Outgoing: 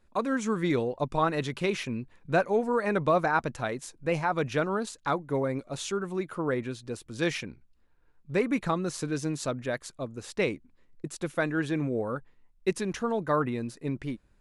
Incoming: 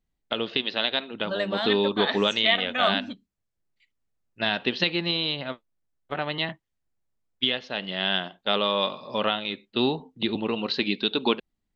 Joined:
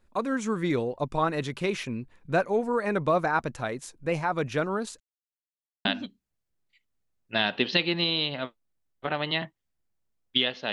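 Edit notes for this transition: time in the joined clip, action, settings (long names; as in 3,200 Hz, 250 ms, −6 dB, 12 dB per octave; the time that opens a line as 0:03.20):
outgoing
0:05.00–0:05.85: silence
0:05.85: continue with incoming from 0:02.92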